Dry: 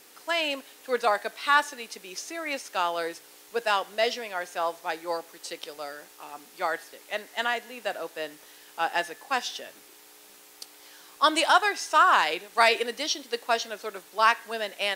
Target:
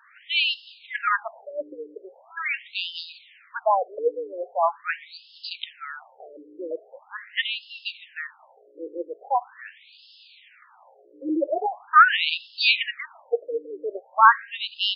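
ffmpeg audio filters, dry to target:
ffmpeg -i in.wav -af "aeval=exprs='val(0)+0.01*(sin(2*PI*60*n/s)+sin(2*PI*2*60*n/s)/2+sin(2*PI*3*60*n/s)/3+sin(2*PI*4*60*n/s)/4+sin(2*PI*5*60*n/s)/5)':channel_layout=same,afftfilt=real='re*between(b*sr/1024,380*pow(3800/380,0.5+0.5*sin(2*PI*0.42*pts/sr))/1.41,380*pow(3800/380,0.5+0.5*sin(2*PI*0.42*pts/sr))*1.41)':imag='im*between(b*sr/1024,380*pow(3800/380,0.5+0.5*sin(2*PI*0.42*pts/sr))/1.41,380*pow(3800/380,0.5+0.5*sin(2*PI*0.42*pts/sr))*1.41)':win_size=1024:overlap=0.75,volume=8dB" out.wav

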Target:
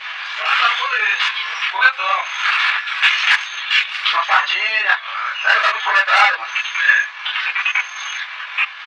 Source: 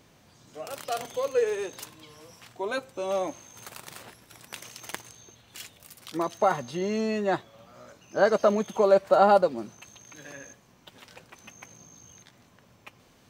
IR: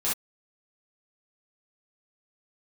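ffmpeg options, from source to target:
-filter_complex "[0:a]agate=range=-33dB:threshold=-55dB:ratio=3:detection=peak,lowpass=frequency=3000:width=0.5412,lowpass=frequency=3000:width=1.3066,asoftclip=type=tanh:threshold=-18dB,acompressor=threshold=-37dB:ratio=3,highpass=frequency=1400:width=0.5412,highpass=frequency=1400:width=1.3066,acompressor=mode=upward:threshold=-54dB:ratio=2.5[link_01];[1:a]atrim=start_sample=2205[link_02];[link_01][link_02]afir=irnorm=-1:irlink=0,atempo=1.5,apsyclip=29.5dB,volume=-1.5dB"

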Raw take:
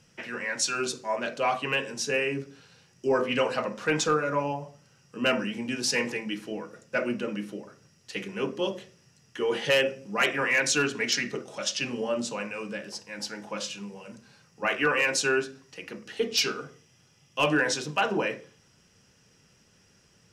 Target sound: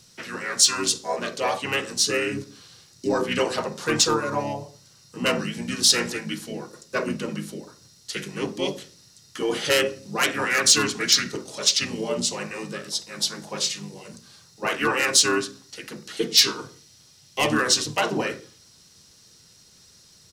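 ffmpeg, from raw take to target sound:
ffmpeg -i in.wav -filter_complex "[0:a]asplit=2[link_01][link_02];[link_02]asetrate=33038,aresample=44100,atempo=1.33484,volume=-3dB[link_03];[link_01][link_03]amix=inputs=2:normalize=0,aexciter=amount=2.7:drive=7.3:freq=3500" out.wav

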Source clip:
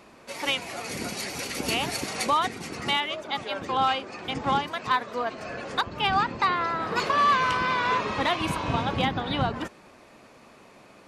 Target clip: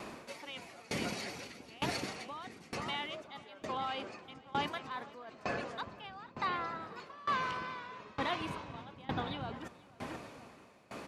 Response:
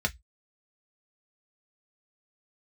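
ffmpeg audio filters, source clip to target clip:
-filter_complex "[0:a]lowshelf=frequency=75:gain=-11,acrossover=split=5900[link_01][link_02];[link_02]acompressor=threshold=-48dB:ratio=4:attack=1:release=60[link_03];[link_01][link_03]amix=inputs=2:normalize=0,lowshelf=frequency=220:gain=5,areverse,acompressor=threshold=-38dB:ratio=6,areverse,asplit=2[link_04][link_05];[link_05]adelay=484,lowpass=frequency=3700:poles=1,volume=-10dB,asplit=2[link_06][link_07];[link_07]adelay=484,lowpass=frequency=3700:poles=1,volume=0.51,asplit=2[link_08][link_09];[link_09]adelay=484,lowpass=frequency=3700:poles=1,volume=0.51,asplit=2[link_10][link_11];[link_11]adelay=484,lowpass=frequency=3700:poles=1,volume=0.51,asplit=2[link_12][link_13];[link_13]adelay=484,lowpass=frequency=3700:poles=1,volume=0.51,asplit=2[link_14][link_15];[link_15]adelay=484,lowpass=frequency=3700:poles=1,volume=0.51[link_16];[link_04][link_06][link_08][link_10][link_12][link_14][link_16]amix=inputs=7:normalize=0,aeval=exprs='val(0)*pow(10,-22*if(lt(mod(1.1*n/s,1),2*abs(1.1)/1000),1-mod(1.1*n/s,1)/(2*abs(1.1)/1000),(mod(1.1*n/s,1)-2*abs(1.1)/1000)/(1-2*abs(1.1)/1000))/20)':channel_layout=same,volume=7dB"

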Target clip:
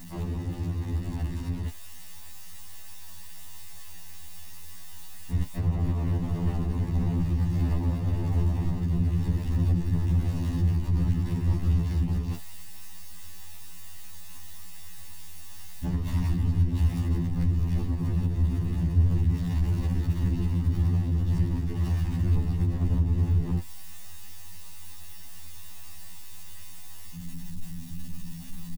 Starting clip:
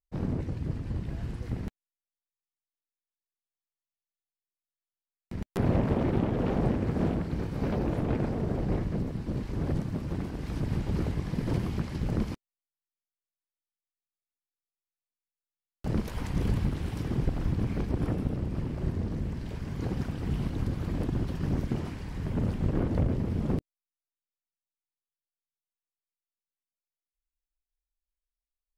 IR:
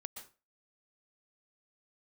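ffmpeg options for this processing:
-af "aeval=exprs='val(0)+0.5*0.0251*sgn(val(0))':channel_layout=same,bandreject=frequency=1600:width=13,aecho=1:1:1.1:0.73,alimiter=limit=-18.5dB:level=0:latency=1:release=161,tremolo=f=200:d=0.947,asubboost=boost=3.5:cutoff=180,afftfilt=real='re*2*eq(mod(b,4),0)':imag='im*2*eq(mod(b,4),0)':win_size=2048:overlap=0.75"

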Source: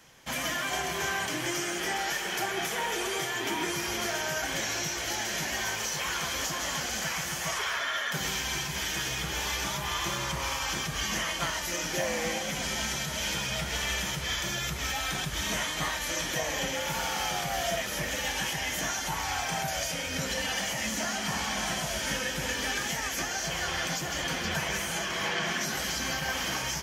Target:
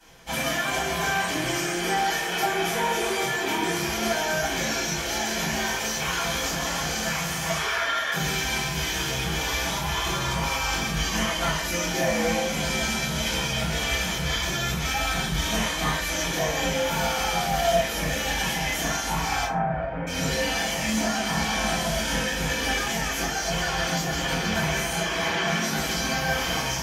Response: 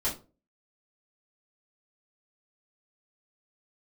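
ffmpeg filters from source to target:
-filter_complex "[0:a]asettb=1/sr,asplit=3[link_01][link_02][link_03];[link_01]atrim=end=19.444[link_04];[link_02]atrim=start=19.44:end=20.07,asetpts=PTS-STARTPTS,afade=type=in:duration=0.004:curve=qsin,afade=type=out:start_time=0.626:duration=0.004:curve=qsin,lowpass=frequency=1600:width=0.5412,lowpass=frequency=1600:width=1.3066[link_05];[link_03]atrim=start=20.066[link_06];[link_04][link_05]acrossfade=duration=0.004:curve1=hsin:curve2=qsin[link_07];[link_07][link_06]acrossfade=duration=0.004:curve1=qsin:curve2=hsin[link_08];[1:a]atrim=start_sample=2205,atrim=end_sample=6174,asetrate=32634,aresample=44100[link_09];[link_08][link_09]afir=irnorm=-1:irlink=0,volume=-4dB"

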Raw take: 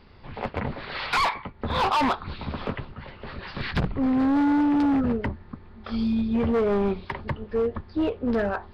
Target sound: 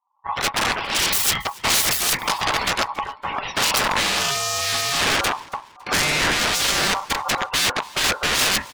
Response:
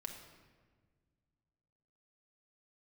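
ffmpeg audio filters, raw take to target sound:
-filter_complex "[0:a]equalizer=frequency=140:width=4.1:gain=9,aeval=exprs='(mod(20*val(0)+1,2)-1)/20':channel_layout=same,acontrast=54,afftdn=noise_reduction=30:noise_floor=-35,agate=range=-33dB:threshold=-29dB:ratio=3:detection=peak,asplit=2[link_01][link_02];[link_02]aecho=0:1:278|556:0.0708|0.0255[link_03];[link_01][link_03]amix=inputs=2:normalize=0,aeval=exprs='val(0)*sin(2*PI*970*n/s)':channel_layout=same,highshelf=frequency=2200:gain=9,volume=5.5dB"

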